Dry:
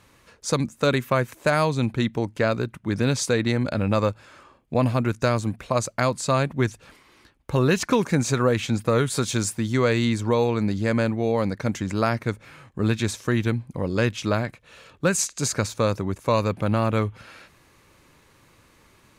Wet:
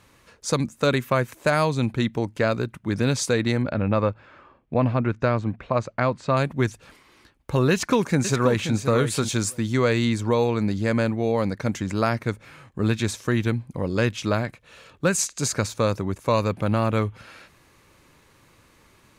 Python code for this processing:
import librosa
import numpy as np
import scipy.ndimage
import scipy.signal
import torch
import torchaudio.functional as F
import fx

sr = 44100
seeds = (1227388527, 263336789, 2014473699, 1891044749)

y = fx.lowpass(x, sr, hz=2600.0, slope=12, at=(3.62, 6.37))
y = fx.echo_throw(y, sr, start_s=7.71, length_s=1.04, ms=530, feedback_pct=10, wet_db=-9.5)